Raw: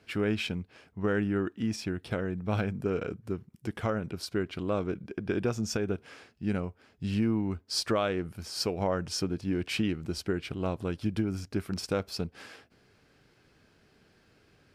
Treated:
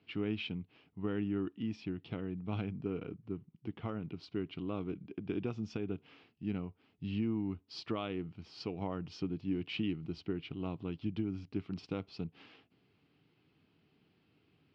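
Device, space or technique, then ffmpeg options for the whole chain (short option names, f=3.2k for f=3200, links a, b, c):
guitar cabinet: -filter_complex "[0:a]asettb=1/sr,asplit=3[a][b][c];[a]atrim=end=2.884[d];[b]atrim=start=2.88:end=3.88,asetpts=PTS-STARTPTS,afade=t=in:d=0.004:c=qsin,afade=t=out:st=0.996:d=0.004:c=qsin,lowpass=f=2.8k:p=1[e];[c]atrim=start=3.876[f];[d][e]acrossfade=d=0.004:c1=hsin:c2=qsin[g];[g][f]acrossfade=d=0.004:c1=qsin:c2=hsin,highpass=89,equalizer=f=100:t=q:w=4:g=3,equalizer=f=160:t=q:w=4:g=6,equalizer=f=290:t=q:w=4:g=6,equalizer=f=560:t=q:w=4:g=-8,equalizer=f=1.6k:t=q:w=4:g=-10,equalizer=f=2.9k:t=q:w=4:g=5,lowpass=f=4k:w=0.5412,lowpass=f=4k:w=1.3066,volume=-8.5dB"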